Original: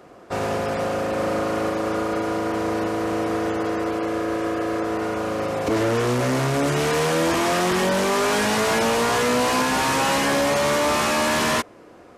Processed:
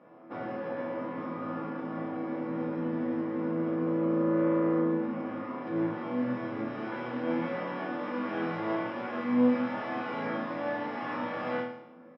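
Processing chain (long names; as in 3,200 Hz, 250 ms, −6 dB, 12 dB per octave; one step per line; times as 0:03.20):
downward compressor, threshold −25 dBFS, peak gain reduction 7 dB
pitch-shifted copies added −12 semitones −1 dB, −4 semitones −1 dB
high-frequency loss of the air 330 metres
resonators tuned to a chord E2 sus4, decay 0.77 s
convolution reverb, pre-delay 3 ms, DRR 4.5 dB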